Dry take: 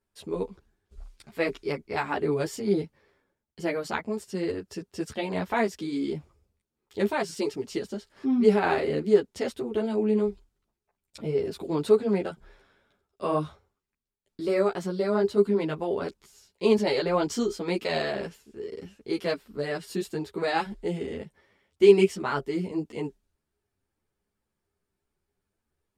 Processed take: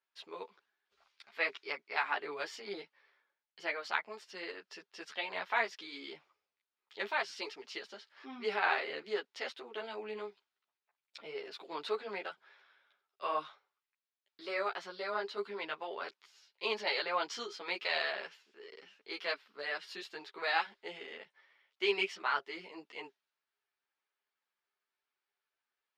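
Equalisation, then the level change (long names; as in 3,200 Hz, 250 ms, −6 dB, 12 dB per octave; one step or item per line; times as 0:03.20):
high-pass filter 1,000 Hz 12 dB per octave
high-frequency loss of the air 270 metres
high-shelf EQ 2,700 Hz +11 dB
−1.0 dB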